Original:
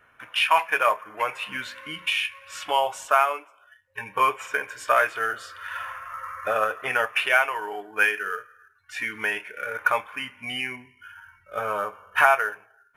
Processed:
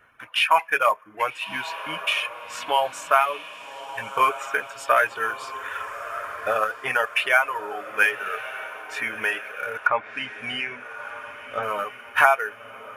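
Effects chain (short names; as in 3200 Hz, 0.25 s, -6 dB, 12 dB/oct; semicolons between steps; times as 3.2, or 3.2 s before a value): reverb removal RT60 0.86 s; diffused feedback echo 1.226 s, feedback 48%, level -12.5 dB; 9.76–11.63 treble ducked by the level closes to 1800 Hz, closed at -20 dBFS; gain +1.5 dB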